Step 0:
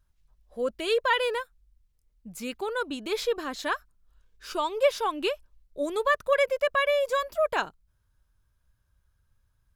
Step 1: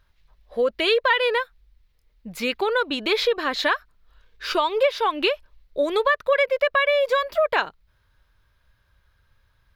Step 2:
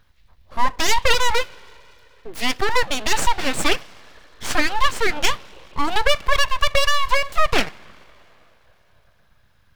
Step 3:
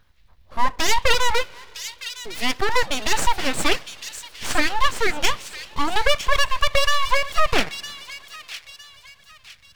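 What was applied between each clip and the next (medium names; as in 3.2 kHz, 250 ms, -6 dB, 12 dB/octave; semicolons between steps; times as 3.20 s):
graphic EQ 500/1000/2000/4000/8000 Hz +6/+4/+9/+9/-8 dB; compression 3:1, threshold -25 dBFS, peak gain reduction 12 dB; trim +5.5 dB
two-slope reverb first 0.22 s, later 3.1 s, from -19 dB, DRR 15 dB; full-wave rectifier; trim +5.5 dB
feedback echo behind a high-pass 958 ms, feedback 35%, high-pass 2.8 kHz, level -8 dB; trim -1 dB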